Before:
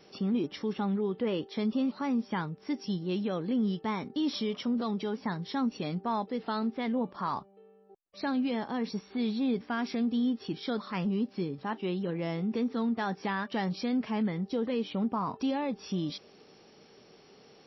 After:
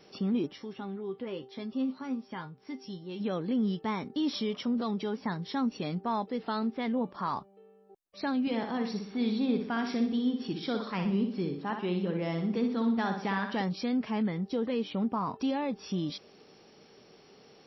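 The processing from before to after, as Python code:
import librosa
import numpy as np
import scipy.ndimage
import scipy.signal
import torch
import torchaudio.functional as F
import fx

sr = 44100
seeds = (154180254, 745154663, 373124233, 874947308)

y = fx.comb_fb(x, sr, f0_hz=130.0, decay_s=0.16, harmonics='all', damping=0.0, mix_pct=80, at=(0.52, 3.19), fade=0.02)
y = fx.echo_feedback(y, sr, ms=61, feedback_pct=44, wet_db=-6.5, at=(8.41, 13.62))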